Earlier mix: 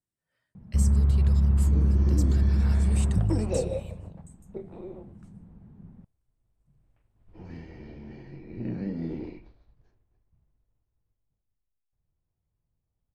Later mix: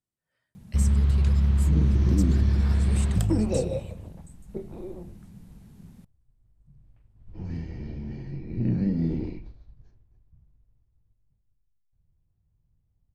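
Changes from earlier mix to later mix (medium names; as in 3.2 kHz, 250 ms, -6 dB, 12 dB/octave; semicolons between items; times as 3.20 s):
first sound: remove low-pass 1.2 kHz 12 dB/octave; second sound: add tone controls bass +11 dB, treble +7 dB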